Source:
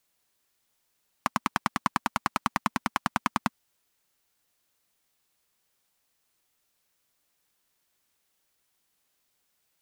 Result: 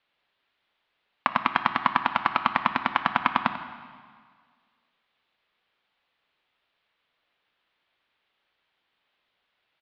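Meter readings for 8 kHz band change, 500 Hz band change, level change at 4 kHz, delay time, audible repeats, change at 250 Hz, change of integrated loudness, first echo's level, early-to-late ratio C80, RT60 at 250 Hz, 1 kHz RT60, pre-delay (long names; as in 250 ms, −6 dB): below −20 dB, +4.5 dB, +4.0 dB, 92 ms, 1, −0.5 dB, +5.0 dB, −13.5 dB, 9.5 dB, 1.8 s, 1.8 s, 5 ms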